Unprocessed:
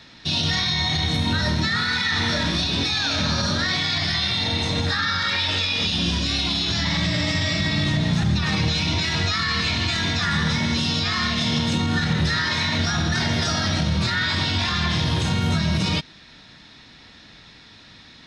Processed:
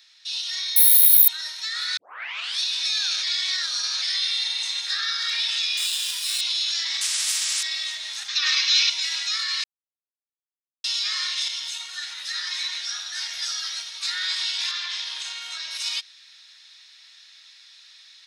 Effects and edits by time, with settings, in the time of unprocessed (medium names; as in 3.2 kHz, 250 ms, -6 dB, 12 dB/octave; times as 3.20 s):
0.76–1.28 s: careless resampling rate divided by 3×, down none, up zero stuff
1.97 s: tape start 0.62 s
3.23–4.02 s: reverse
4.67–5.13 s: frequency weighting A
5.77–6.41 s: sliding maximum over 3 samples
7.01–7.63 s: spectrum-flattening compressor 4:1
8.28–8.90 s: FFT filter 400 Hz 0 dB, 720 Hz -10 dB, 1.1 kHz +9 dB, 6 kHz +7 dB, 9.7 kHz -11 dB
9.64–10.84 s: mute
11.48–14.03 s: three-phase chorus
14.71–15.71 s: Bessel low-pass 5.1 kHz
whole clip: high-pass 1.1 kHz 12 dB/octave; differentiator; level rider gain up to 5 dB